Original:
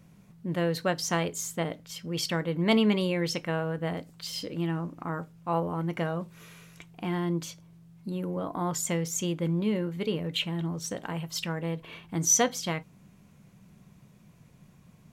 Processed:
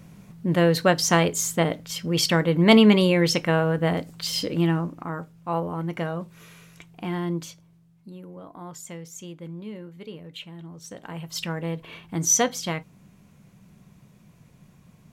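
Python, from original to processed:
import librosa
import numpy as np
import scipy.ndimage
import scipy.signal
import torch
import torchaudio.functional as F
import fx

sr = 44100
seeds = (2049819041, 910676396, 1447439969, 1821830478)

y = fx.gain(x, sr, db=fx.line((4.68, 8.5), (5.08, 1.5), (7.33, 1.5), (8.24, -9.5), (10.68, -9.5), (11.42, 2.5)))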